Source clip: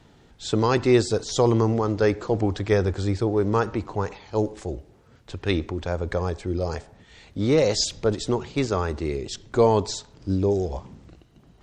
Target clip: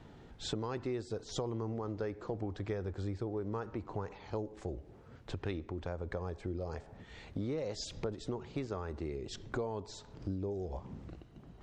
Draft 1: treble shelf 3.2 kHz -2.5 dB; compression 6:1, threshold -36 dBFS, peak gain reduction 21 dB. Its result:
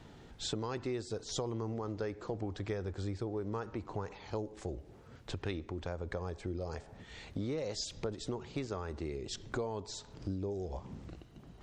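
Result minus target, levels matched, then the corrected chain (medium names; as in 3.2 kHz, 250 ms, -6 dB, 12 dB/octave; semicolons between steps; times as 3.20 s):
8 kHz band +4.5 dB
treble shelf 3.2 kHz -10.5 dB; compression 6:1, threshold -36 dBFS, peak gain reduction 21 dB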